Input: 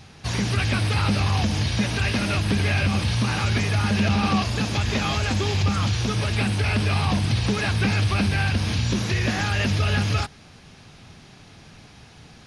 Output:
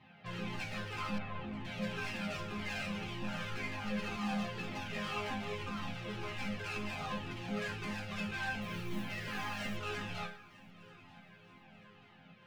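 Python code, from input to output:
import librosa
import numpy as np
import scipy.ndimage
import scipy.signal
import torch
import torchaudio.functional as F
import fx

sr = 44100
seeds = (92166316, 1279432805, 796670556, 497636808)

p1 = scipy.signal.sosfilt(scipy.signal.cheby1(3, 1.0, [110.0, 2900.0], 'bandpass', fs=sr, output='sos'), x)
p2 = np.clip(p1, -10.0 ** (-27.0 / 20.0), 10.0 ** (-27.0 / 20.0))
p3 = fx.resonator_bank(p2, sr, root=53, chord='minor', decay_s=0.44)
p4 = fx.air_absorb(p3, sr, metres=400.0, at=(1.18, 1.65))
p5 = fx.mod_noise(p4, sr, seeds[0], snr_db=24, at=(8.61, 9.77))
p6 = p5 + fx.echo_feedback(p5, sr, ms=937, feedback_pct=47, wet_db=-21.5, dry=0)
p7 = fx.comb_cascade(p6, sr, direction='falling', hz=1.9)
y = p7 * 10.0 ** (13.5 / 20.0)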